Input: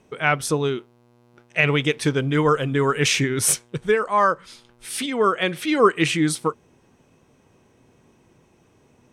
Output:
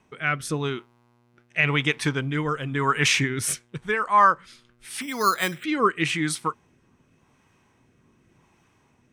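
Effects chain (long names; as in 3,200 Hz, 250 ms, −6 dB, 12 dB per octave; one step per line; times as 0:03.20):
rotating-speaker cabinet horn 0.9 Hz
0:05.01–0:05.64: bad sample-rate conversion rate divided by 8×, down filtered, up hold
graphic EQ with 10 bands 500 Hz −7 dB, 1,000 Hz +6 dB, 2,000 Hz +4 dB
level −2 dB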